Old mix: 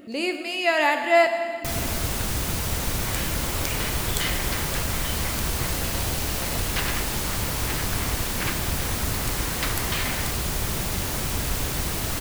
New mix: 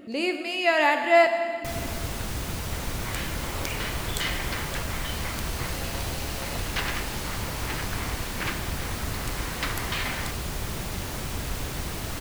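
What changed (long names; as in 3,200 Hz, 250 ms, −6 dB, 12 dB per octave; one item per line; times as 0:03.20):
first sound −4.0 dB
master: add high-shelf EQ 6,100 Hz −6 dB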